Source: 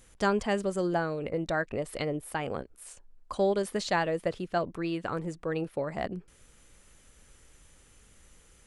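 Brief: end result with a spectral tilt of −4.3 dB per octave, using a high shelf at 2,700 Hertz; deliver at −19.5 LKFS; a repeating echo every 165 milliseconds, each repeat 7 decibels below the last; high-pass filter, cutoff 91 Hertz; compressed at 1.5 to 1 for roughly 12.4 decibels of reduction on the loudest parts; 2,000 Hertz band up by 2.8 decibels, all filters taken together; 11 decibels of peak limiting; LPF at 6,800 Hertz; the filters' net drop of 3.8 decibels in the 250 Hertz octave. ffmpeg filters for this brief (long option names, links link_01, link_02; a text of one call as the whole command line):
ffmpeg -i in.wav -af "highpass=91,lowpass=6800,equalizer=frequency=250:width_type=o:gain=-6,equalizer=frequency=2000:width_type=o:gain=5,highshelf=frequency=2700:gain=-3.5,acompressor=threshold=-59dB:ratio=1.5,alimiter=level_in=12.5dB:limit=-24dB:level=0:latency=1,volume=-12.5dB,aecho=1:1:165|330|495|660|825:0.447|0.201|0.0905|0.0407|0.0183,volume=26.5dB" out.wav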